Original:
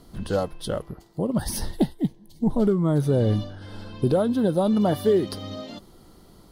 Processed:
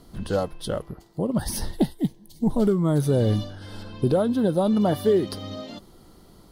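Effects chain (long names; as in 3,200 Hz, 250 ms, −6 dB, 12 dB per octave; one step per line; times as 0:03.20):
0:01.84–0:03.83: high-shelf EQ 4,100 Hz +7.5 dB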